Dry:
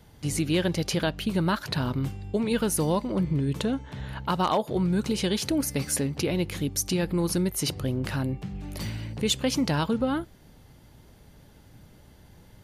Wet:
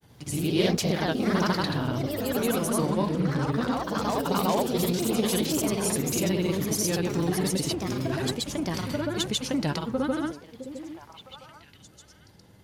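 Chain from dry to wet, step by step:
high-pass filter 85 Hz 12 dB per octave
in parallel at −10 dB: soft clipping −24 dBFS, distortion −13 dB
on the sum: granular cloud, pitch spread up and down by 0 semitones
on a send: echo through a band-pass that steps 660 ms, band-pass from 370 Hz, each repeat 1.4 octaves, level −8.5 dB
on the sum: delay with pitch and tempo change per echo 81 ms, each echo +2 semitones, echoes 3
level −2.5 dB

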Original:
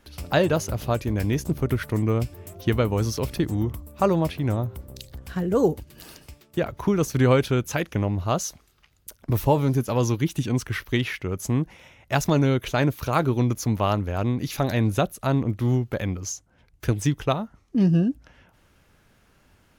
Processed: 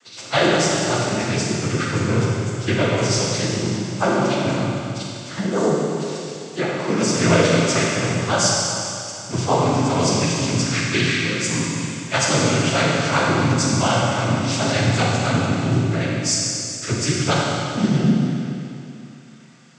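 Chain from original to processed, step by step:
every partial snapped to a pitch grid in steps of 3 semitones
cochlear-implant simulation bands 16
four-comb reverb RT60 2.7 s, combs from 32 ms, DRR −3 dB

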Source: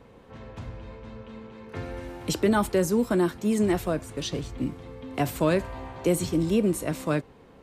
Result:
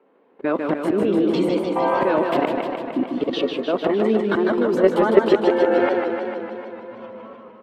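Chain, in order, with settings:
played backwards from end to start
noise reduction from a noise print of the clip's start 14 dB
high-pass filter 270 Hz 24 dB per octave
high-shelf EQ 10,000 Hz −9 dB
in parallel at −2.5 dB: downward compressor 6 to 1, threshold −38 dBFS, peak gain reduction 17.5 dB
on the sum: volume swells 134 ms
output level in coarse steps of 20 dB
high-frequency loss of the air 450 metres
on a send: single-tap delay 164 ms −13 dB
on the sum: boost into a limiter +24.5 dB
feedback echo with a swinging delay time 151 ms, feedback 70%, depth 131 cents, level −5 dB
level −3 dB

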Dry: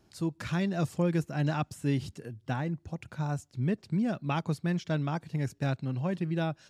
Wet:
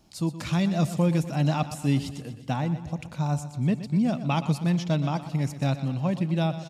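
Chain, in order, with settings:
graphic EQ with 15 bands 100 Hz −8 dB, 400 Hz −9 dB, 1,600 Hz −10 dB
repeating echo 122 ms, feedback 57%, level −13 dB
on a send at −23 dB: convolution reverb, pre-delay 7 ms
on the sum: level +7.5 dB

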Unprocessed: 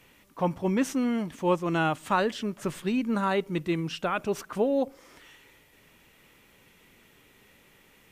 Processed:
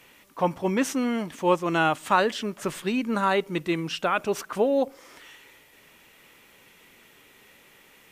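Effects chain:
low-shelf EQ 230 Hz −10 dB
level +5 dB

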